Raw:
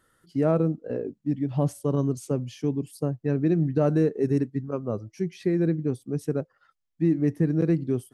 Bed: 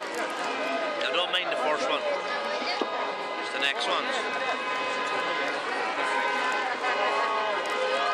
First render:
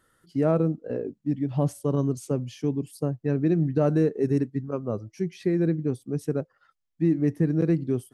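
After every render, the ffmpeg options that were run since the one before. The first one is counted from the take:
-af anull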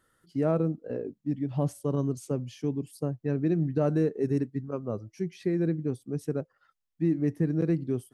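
-af "volume=0.668"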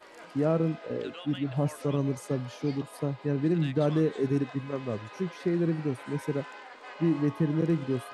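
-filter_complex "[1:a]volume=0.126[s0];[0:a][s0]amix=inputs=2:normalize=0"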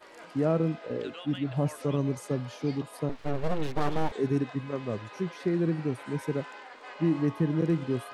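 -filter_complex "[0:a]asettb=1/sr,asplit=3[s0][s1][s2];[s0]atrim=end=3.094[s3];[s1]atrim=start=3.09:end=4.12,asetpts=PTS-STARTPTS,afade=t=in:d=0.004:c=qsin,afade=t=out:st=1.026:d=0.004:c=qsin,aeval=exprs='abs(val(0))':c=same[s4];[s2]atrim=start=4.116[s5];[s3][s4]acrossfade=d=0.004:c1=hsin:c2=qsin[s6];[s6][s5]acrossfade=d=0.004:c1=qsin:c2=hsin"

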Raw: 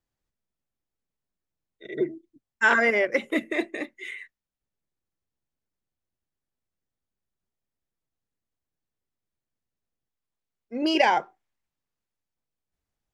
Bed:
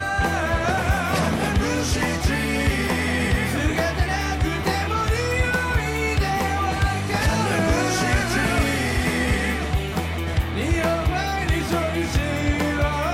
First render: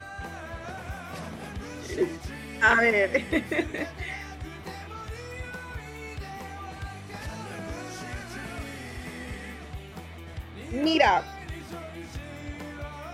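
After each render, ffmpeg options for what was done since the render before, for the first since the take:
-filter_complex "[1:a]volume=0.15[s0];[0:a][s0]amix=inputs=2:normalize=0"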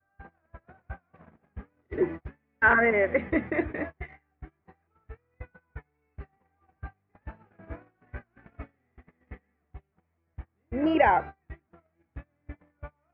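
-af "lowpass=f=2000:w=0.5412,lowpass=f=2000:w=1.3066,agate=range=0.02:threshold=0.02:ratio=16:detection=peak"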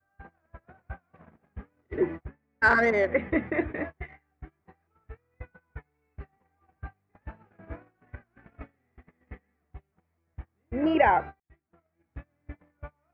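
-filter_complex "[0:a]asettb=1/sr,asplit=3[s0][s1][s2];[s0]atrim=end=2.254[s3];[s1]atrim=start=2.25:end=3.12,asetpts=PTS-STARTPTS,afade=t=in:d=0.004:c=qsin,afade=t=out:st=0.866:d=0.004:c=qsin,adynamicsmooth=sensitivity=1:basefreq=2700[s4];[s2]atrim=start=3.116[s5];[s3][s4]acrossfade=d=0.004:c1=hsin:c2=qsin[s6];[s6][s5]acrossfade=d=0.004:c1=qsin:c2=hsin,asettb=1/sr,asplit=3[s7][s8][s9];[s7]atrim=end=8.154[s10];[s8]atrim=start=8.15:end=8.61,asetpts=PTS-STARTPTS,afade=t=in:d=0.004:c=qsin,afade=t=out:st=0.456:d=0.004:c=qsin,acompressor=threshold=0.00708:ratio=6:attack=3.2:release=140:knee=1:detection=peak[s11];[s9]atrim=start=8.606[s12];[s10][s11]acrossfade=d=0.004:c1=hsin:c2=qsin[s13];[s13][s12]acrossfade=d=0.004:c1=qsin:c2=hsin,asplit=2[s14][s15];[s14]atrim=end=11.4,asetpts=PTS-STARTPTS,afade=t=out:st=11.396:d=0.004:c=hsin[s16];[s15]atrim=start=11.4,asetpts=PTS-STARTPTS,afade=t=in:d=0.79[s17];[s16][s17]concat=n=2:v=0:a=1"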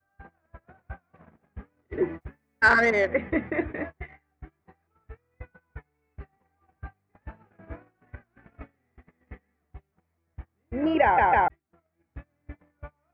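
-filter_complex "[0:a]asettb=1/sr,asplit=3[s0][s1][s2];[s0]atrim=end=2.214[s3];[s1]atrim=start=2.21:end=3.08,asetpts=PTS-STARTPTS,afade=t=in:d=0.004:c=qsin,afade=t=out:st=0.866:d=0.004:c=qsin,highshelf=f=2200:g=8[s4];[s2]atrim=start=3.076[s5];[s3][s4]acrossfade=d=0.004:c1=hsin:c2=qsin[s6];[s6][s5]acrossfade=d=0.004:c1=qsin:c2=hsin,asplit=4[s7][s8][s9][s10];[s7]atrim=end=11.182[s11];[s8]atrim=start=11.028:end=11.182[s12];[s9]atrim=start=11.028:end=11.182[s13];[s10]atrim=start=11.478[s14];[s11][s12]acrossfade=d=0.004:c1=hsin:c2=hsin[s15];[s15][s13]acrossfade=d=0.004:c1=hsin:c2=hsin[s16];[s16][s14]acrossfade=d=0.004:c1=hsin:c2=hsin"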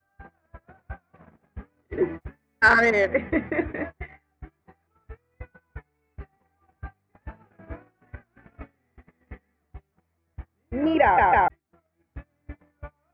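-af "volume=1.26"

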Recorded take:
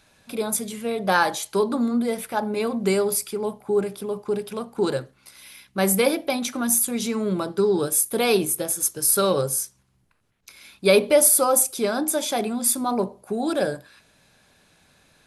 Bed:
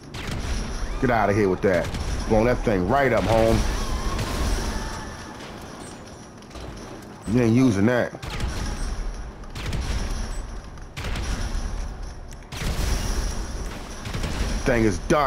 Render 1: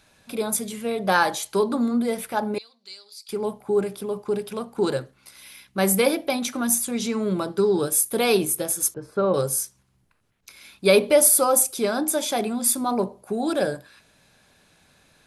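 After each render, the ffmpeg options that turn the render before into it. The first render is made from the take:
-filter_complex "[0:a]asettb=1/sr,asplit=3[s0][s1][s2];[s0]atrim=end=2.584[s3];[s1]atrim=start=2.58:end=3.29,asetpts=PTS-STARTPTS,afade=t=in:d=0.004:c=qsin,afade=t=out:st=0.706:d=0.004:c=qsin,bandpass=f=4300:t=q:w=6.6[s4];[s2]atrim=start=3.286[s5];[s3][s4]acrossfade=d=0.004:c1=hsin:c2=qsin[s6];[s6][s5]acrossfade=d=0.004:c1=qsin:c2=hsin,asettb=1/sr,asplit=3[s7][s8][s9];[s7]atrim=end=6.754[s10];[s8]atrim=start=6.75:end=7.22,asetpts=PTS-STARTPTS,afade=t=in:d=0.004:c=qsin,afade=t=out:st=0.466:d=0.004:c=qsin,lowpass=8800[s11];[s9]atrim=start=7.216[s12];[s10][s11]acrossfade=d=0.004:c1=hsin:c2=qsin[s13];[s13][s12]acrossfade=d=0.004:c1=qsin:c2=hsin,asettb=1/sr,asplit=3[s14][s15][s16];[s14]atrim=end=8.944[s17];[s15]atrim=start=8.94:end=9.34,asetpts=PTS-STARTPTS,afade=t=in:d=0.004:c=qsin,afade=t=out:st=0.396:d=0.004:c=qsin,lowpass=1200[s18];[s16]atrim=start=9.336[s19];[s17][s18]acrossfade=d=0.004:c1=hsin:c2=qsin[s20];[s20][s19]acrossfade=d=0.004:c1=qsin:c2=hsin"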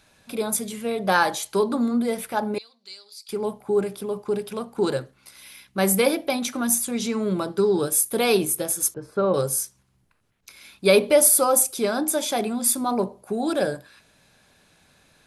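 -af anull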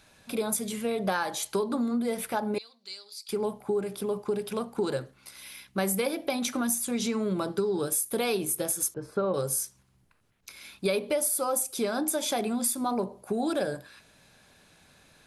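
-af "acompressor=threshold=0.0562:ratio=6"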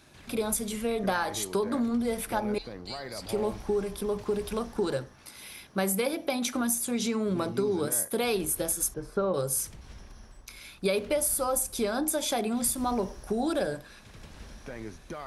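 -filter_complex "[1:a]volume=0.0944[s0];[0:a][s0]amix=inputs=2:normalize=0"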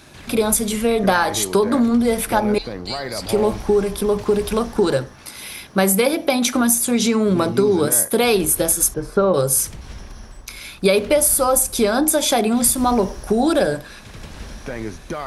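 -af "volume=3.76"

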